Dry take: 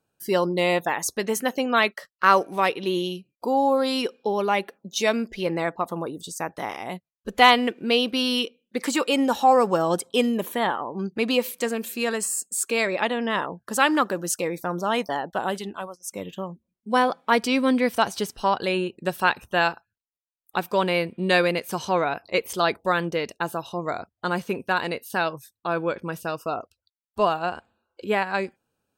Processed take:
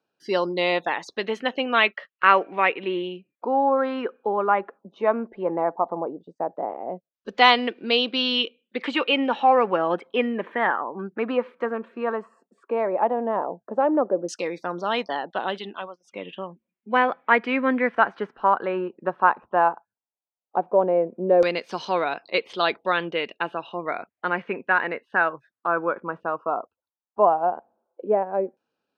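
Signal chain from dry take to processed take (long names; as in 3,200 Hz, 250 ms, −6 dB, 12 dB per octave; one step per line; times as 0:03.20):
three-way crossover with the lows and the highs turned down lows −21 dB, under 190 Hz, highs −14 dB, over 3,900 Hz
auto-filter low-pass saw down 0.14 Hz 550–5,500 Hz
level −1 dB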